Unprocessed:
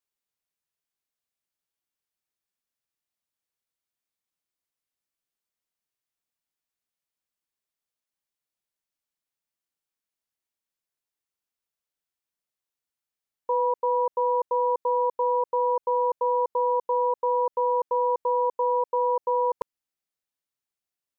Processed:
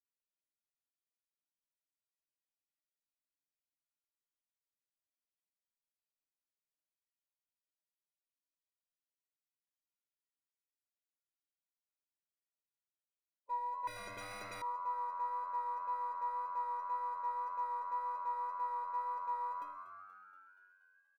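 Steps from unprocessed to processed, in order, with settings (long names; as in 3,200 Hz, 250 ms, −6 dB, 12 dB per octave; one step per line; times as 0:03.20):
spectral magnitudes quantised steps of 15 dB
in parallel at −6.5 dB: hard clipping −27 dBFS, distortion −9 dB
on the sum: stiff-string resonator 290 Hz, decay 0.55 s, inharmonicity 0.03
echo with shifted repeats 238 ms, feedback 64%, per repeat +94 Hz, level −13.5 dB
on a send at −10 dB: convolution reverb, pre-delay 3 ms
on the sum: pitch vibrato 1.9 Hz 11 cents
0:13.87–0:14.62: every bin compressed towards the loudest bin 10 to 1
level −2 dB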